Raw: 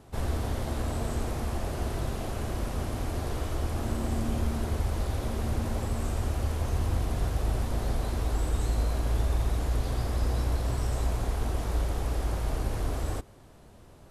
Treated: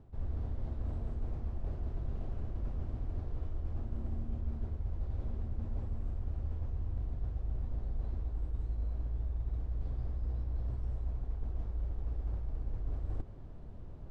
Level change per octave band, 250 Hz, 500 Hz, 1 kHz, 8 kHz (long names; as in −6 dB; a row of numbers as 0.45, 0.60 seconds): −13.0 dB, −16.5 dB, −19.5 dB, below −35 dB